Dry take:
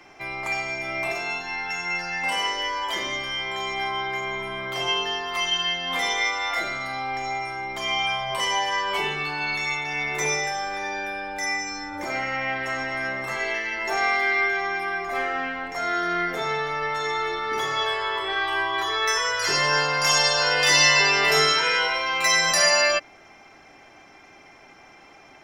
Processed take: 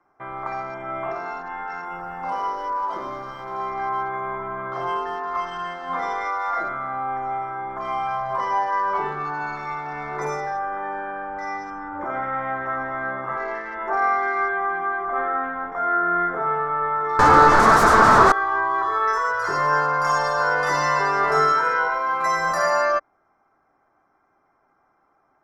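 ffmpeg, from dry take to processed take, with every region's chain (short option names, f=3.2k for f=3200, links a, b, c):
-filter_complex "[0:a]asettb=1/sr,asplit=3[a][b][c];[a]atrim=end=1.854[d];[b]atrim=start=1.85:end=3.6,asetpts=PTS-STARTPTS,afade=t=in:d=0.004:c=qsin,afade=t=out:st=1.746:d=0.004:c=qsin,equalizer=f=1.8k:t=o:w=0.43:g=-12.5,acrusher=bits=7:dc=4:mix=0:aa=0.000001[e];[c]atrim=start=3.596[f];[d][e]acrossfade=d=0.004:c1=hsin:c2=qsin[g];[g][f]acrossfade=d=0.004:c1=qsin:c2=hsin,asettb=1/sr,asplit=3[h][i][j];[h]atrim=end=17.194[k];[i]atrim=start=17.19:end=18.32,asetpts=PTS-STARTPTS,afade=t=in:d=0.004:c=qsin,afade=t=out:st=1.126:d=0.004:c=qsin,lowpass=f=2.7k:p=1,acontrast=44,aeval=exprs='0.299*sin(PI/2*5.01*val(0)/0.299)':c=same[l];[j]atrim=start=18.316[m];[k][l]acrossfade=d=0.004:c1=hsin:c2=qsin[n];[n][m]acrossfade=d=0.004:c1=qsin:c2=hsin,afwtdn=0.0178,highshelf=f=1.9k:t=q:w=3:g=-13.5"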